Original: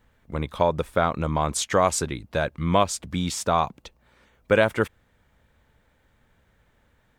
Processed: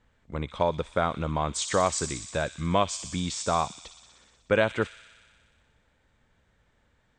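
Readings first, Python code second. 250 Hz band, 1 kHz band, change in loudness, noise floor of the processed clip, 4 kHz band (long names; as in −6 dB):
−4.0 dB, −4.0 dB, −3.5 dB, −68 dBFS, −2.0 dB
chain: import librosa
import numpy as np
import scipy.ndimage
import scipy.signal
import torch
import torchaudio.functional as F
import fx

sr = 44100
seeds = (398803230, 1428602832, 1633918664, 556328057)

y = scipy.signal.sosfilt(scipy.signal.ellip(4, 1.0, 50, 8200.0, 'lowpass', fs=sr, output='sos'), x)
y = fx.echo_wet_highpass(y, sr, ms=61, feedback_pct=79, hz=3700.0, wet_db=-6.0)
y = y * 10.0 ** (-3.0 / 20.0)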